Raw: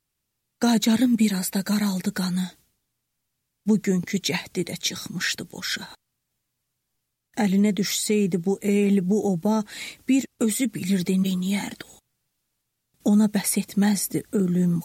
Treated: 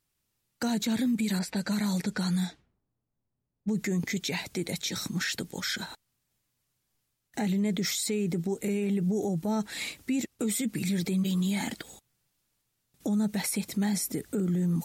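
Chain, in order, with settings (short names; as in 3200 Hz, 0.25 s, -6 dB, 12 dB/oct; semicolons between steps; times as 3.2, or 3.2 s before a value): limiter -21.5 dBFS, peak gain reduction 11 dB; 1.39–3.69 low-pass opened by the level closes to 670 Hz, open at -24.5 dBFS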